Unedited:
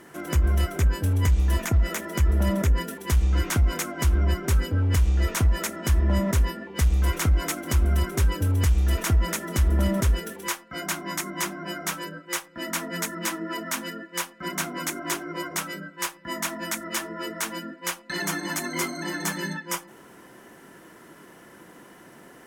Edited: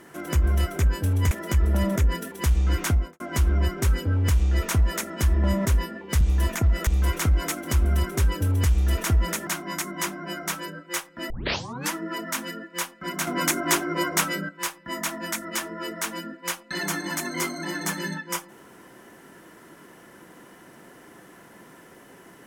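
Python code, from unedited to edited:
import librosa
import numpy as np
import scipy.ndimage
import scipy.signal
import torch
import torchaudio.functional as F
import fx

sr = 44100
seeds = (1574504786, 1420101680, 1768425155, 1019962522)

y = fx.studio_fade_out(x, sr, start_s=3.55, length_s=0.31)
y = fx.edit(y, sr, fx.move(start_s=1.31, length_s=0.66, to_s=6.87),
    fx.cut(start_s=9.47, length_s=1.39),
    fx.tape_start(start_s=12.69, length_s=0.62),
    fx.clip_gain(start_s=14.66, length_s=1.22, db=6.5), tone=tone)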